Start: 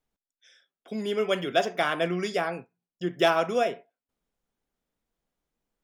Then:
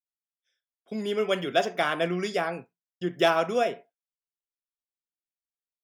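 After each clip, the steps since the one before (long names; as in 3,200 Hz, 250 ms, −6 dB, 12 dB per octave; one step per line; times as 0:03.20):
downward expander −45 dBFS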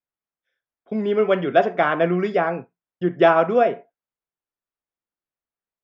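low-pass filter 1,700 Hz 12 dB per octave
level +8 dB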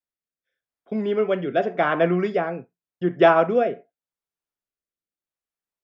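rotating-speaker cabinet horn 0.85 Hz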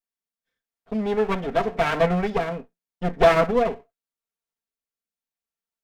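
lower of the sound and its delayed copy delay 4.4 ms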